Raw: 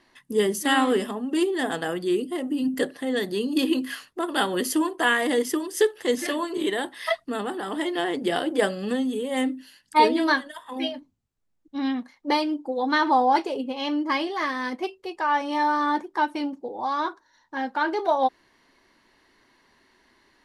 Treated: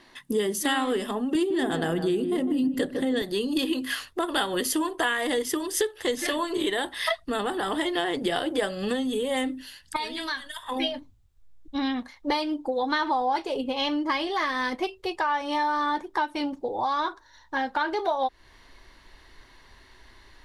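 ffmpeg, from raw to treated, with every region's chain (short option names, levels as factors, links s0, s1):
-filter_complex "[0:a]asettb=1/sr,asplit=3[s0][s1][s2];[s0]atrim=end=1.354[s3];[s1]atrim=start=1.35:end=3.22,asetpts=PTS-STARTPTS,afade=t=in:d=0.004:c=qsin,afade=t=out:st=1.866:d=0.004:c=qsin,equalizer=f=170:t=o:w=1.8:g=11,asplit=2[s4][s5];[s5]adelay=153,lowpass=f=1000:p=1,volume=0.422,asplit=2[s6][s7];[s7]adelay=153,lowpass=f=1000:p=1,volume=0.39,asplit=2[s8][s9];[s9]adelay=153,lowpass=f=1000:p=1,volume=0.39,asplit=2[s10][s11];[s11]adelay=153,lowpass=f=1000:p=1,volume=0.39[s12];[s4][s6][s8][s10][s12]amix=inputs=5:normalize=0,atrim=end_sample=82467[s13];[s2]atrim=start=3.216[s14];[s3][s13]acrossfade=d=0.004:c1=hsin:c2=qsin[s15];[s15][s14]acrossfade=d=0.004:c1=qsin:c2=hsin,asettb=1/sr,asplit=3[s16][s17][s18];[s16]atrim=end=9.964[s19];[s17]atrim=start=9.96:end=10.63,asetpts=PTS-STARTPTS,afade=t=in:d=0.004:c=qsin,afade=t=out:st=0.666:d=0.004:c=qsin,equalizer=f=440:w=0.52:g=-15,acompressor=threshold=0.0141:ratio=2.5:attack=3.2:release=140:knee=1:detection=peak[s20];[s18]atrim=start=10.626[s21];[s19][s20]acrossfade=d=0.004:c1=hsin:c2=qsin[s22];[s22][s21]acrossfade=d=0.004:c1=qsin:c2=hsin,asubboost=boost=9:cutoff=71,acompressor=threshold=0.0282:ratio=4,equalizer=f=3600:t=o:w=0.26:g=4.5,volume=2.11"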